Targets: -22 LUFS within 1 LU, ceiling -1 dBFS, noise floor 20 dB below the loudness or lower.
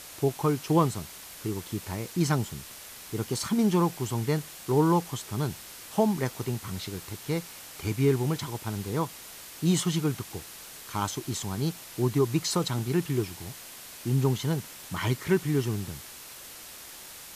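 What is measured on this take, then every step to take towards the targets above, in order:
noise floor -45 dBFS; noise floor target -49 dBFS; loudness -29.0 LUFS; peak level -11.5 dBFS; loudness target -22.0 LUFS
-> noise print and reduce 6 dB; trim +7 dB

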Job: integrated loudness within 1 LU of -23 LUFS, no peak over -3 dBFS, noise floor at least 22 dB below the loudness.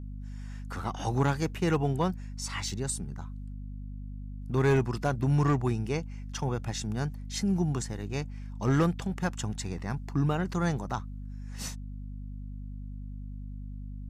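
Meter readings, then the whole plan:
clipped samples 0.3%; clipping level -18.5 dBFS; hum 50 Hz; highest harmonic 250 Hz; hum level -37 dBFS; loudness -30.5 LUFS; peak level -18.5 dBFS; loudness target -23.0 LUFS
-> clip repair -18.5 dBFS; hum notches 50/100/150/200/250 Hz; trim +7.5 dB

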